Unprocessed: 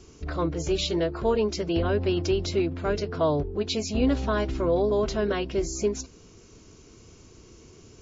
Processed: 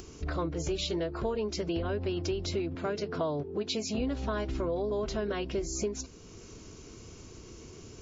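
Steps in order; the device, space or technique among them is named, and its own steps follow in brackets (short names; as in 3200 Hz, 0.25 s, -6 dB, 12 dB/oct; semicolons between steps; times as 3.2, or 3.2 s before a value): 2.75–3.98 HPF 110 Hz 24 dB/oct; upward and downward compression (upward compressor, threshold -42 dBFS; compressor 5:1, threshold -29 dBFS, peak gain reduction 10 dB)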